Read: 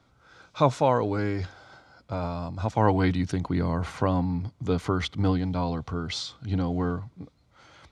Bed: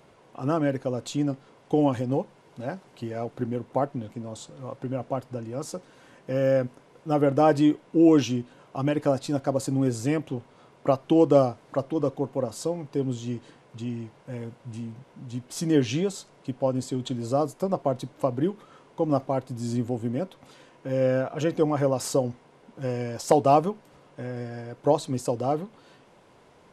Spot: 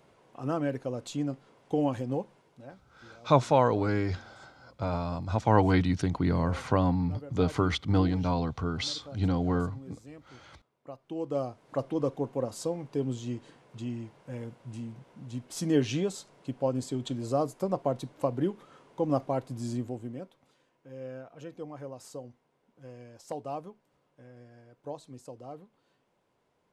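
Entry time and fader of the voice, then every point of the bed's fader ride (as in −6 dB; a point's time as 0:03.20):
2.70 s, −0.5 dB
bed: 0:02.34 −5.5 dB
0:02.96 −23 dB
0:10.85 −23 dB
0:11.81 −3.5 dB
0:19.61 −3.5 dB
0:20.62 −18 dB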